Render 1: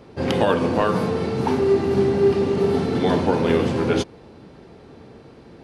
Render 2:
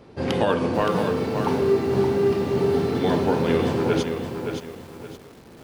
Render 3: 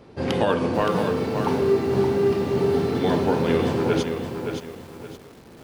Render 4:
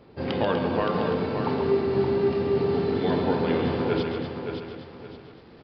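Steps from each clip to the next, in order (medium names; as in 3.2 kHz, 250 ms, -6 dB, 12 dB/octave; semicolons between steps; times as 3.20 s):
bit-crushed delay 570 ms, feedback 35%, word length 7-bit, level -6.5 dB; trim -2.5 dB
no audible change
on a send: loudspeakers at several distances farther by 47 m -8 dB, 84 m -9 dB; on the sum: resampled via 11.025 kHz; trim -4 dB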